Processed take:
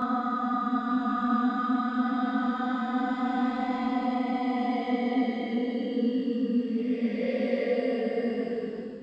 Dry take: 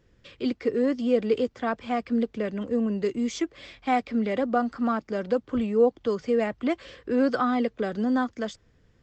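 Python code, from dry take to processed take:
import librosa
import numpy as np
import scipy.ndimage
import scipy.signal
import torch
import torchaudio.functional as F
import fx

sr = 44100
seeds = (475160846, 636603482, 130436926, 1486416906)

y = fx.paulstretch(x, sr, seeds[0], factor=38.0, window_s=0.05, from_s=7.45)
y = fx.detune_double(y, sr, cents=28)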